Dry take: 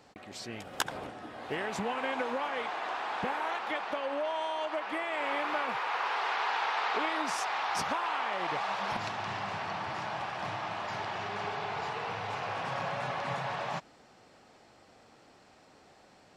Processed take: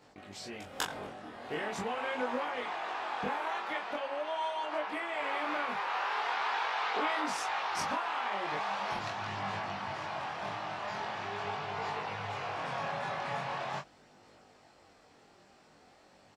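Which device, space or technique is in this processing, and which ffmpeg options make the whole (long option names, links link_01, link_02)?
double-tracked vocal: -filter_complex "[0:a]asplit=2[link_01][link_02];[link_02]adelay=20,volume=-5dB[link_03];[link_01][link_03]amix=inputs=2:normalize=0,flanger=delay=20:depth=5.2:speed=0.42"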